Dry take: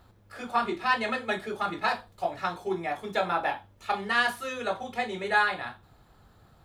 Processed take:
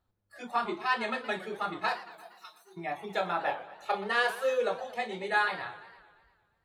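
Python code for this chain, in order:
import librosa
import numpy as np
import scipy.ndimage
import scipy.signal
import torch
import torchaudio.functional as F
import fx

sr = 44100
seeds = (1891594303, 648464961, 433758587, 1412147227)

y = fx.pre_emphasis(x, sr, coefficient=0.97, at=(1.97, 2.77))
y = fx.noise_reduce_blind(y, sr, reduce_db=18)
y = fx.peak_eq(y, sr, hz=510.0, db=14.5, octaves=0.36, at=(3.47, 4.69))
y = fx.echo_warbled(y, sr, ms=116, feedback_pct=61, rate_hz=2.8, cents=202, wet_db=-15.5)
y = F.gain(torch.from_numpy(y), -3.5).numpy()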